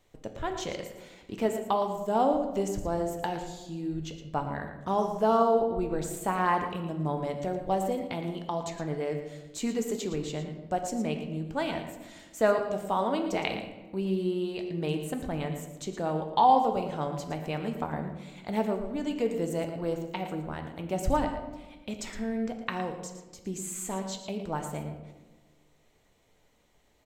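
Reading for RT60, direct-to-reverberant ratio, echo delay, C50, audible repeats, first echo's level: 1.3 s, 4.0 dB, 114 ms, 6.5 dB, 1, -11.0 dB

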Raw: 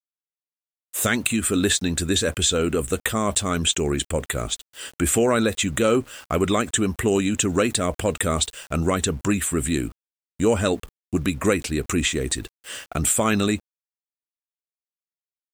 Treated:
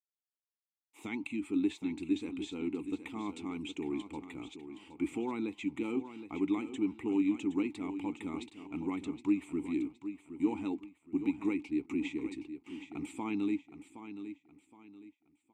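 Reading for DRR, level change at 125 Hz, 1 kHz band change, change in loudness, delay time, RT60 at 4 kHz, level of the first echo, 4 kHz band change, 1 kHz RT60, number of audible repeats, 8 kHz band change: no reverb, -23.0 dB, -17.5 dB, -14.0 dB, 768 ms, no reverb, -11.0 dB, -24.5 dB, no reverb, 3, under -30 dB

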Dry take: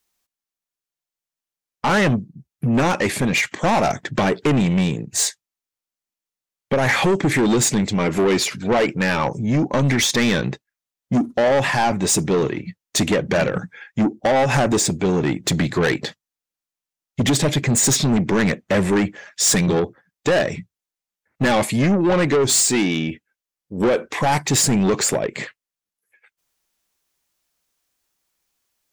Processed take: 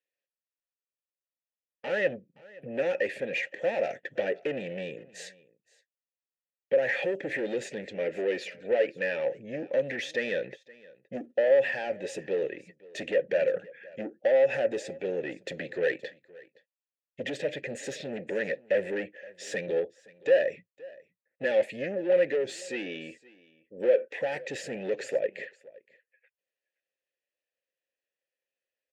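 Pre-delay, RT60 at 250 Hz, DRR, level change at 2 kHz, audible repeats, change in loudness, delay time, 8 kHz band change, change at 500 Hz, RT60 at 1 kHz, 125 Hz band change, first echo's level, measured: no reverb, no reverb, no reverb, -10.0 dB, 1, -10.5 dB, 520 ms, -28.0 dB, -5.5 dB, no reverb, -26.5 dB, -22.5 dB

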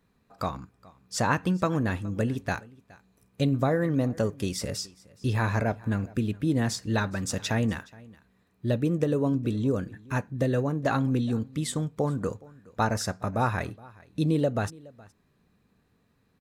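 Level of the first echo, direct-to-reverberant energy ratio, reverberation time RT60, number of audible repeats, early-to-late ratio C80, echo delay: -23.0 dB, no reverb, no reverb, 1, no reverb, 419 ms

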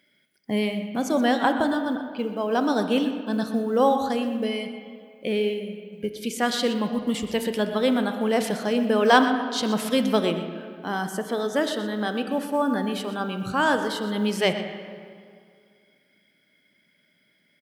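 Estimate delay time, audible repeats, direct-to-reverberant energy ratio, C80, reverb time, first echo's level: 123 ms, 1, 6.5 dB, 8.0 dB, 2.2 s, -13.5 dB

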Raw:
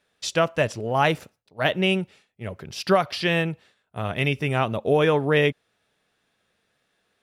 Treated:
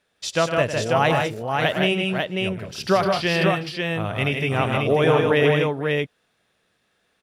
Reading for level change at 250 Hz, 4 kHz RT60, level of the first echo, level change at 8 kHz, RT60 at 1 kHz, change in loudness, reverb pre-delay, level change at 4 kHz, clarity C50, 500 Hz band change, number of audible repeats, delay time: +3.0 dB, no reverb, -11.0 dB, +3.0 dB, no reverb, +2.0 dB, no reverb, +3.0 dB, no reverb, +3.0 dB, 4, 103 ms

